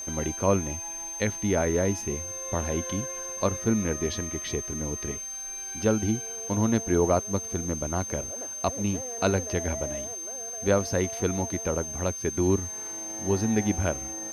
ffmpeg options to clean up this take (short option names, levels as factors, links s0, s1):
-af "bandreject=f=6300:w=30,afwtdn=0.0025"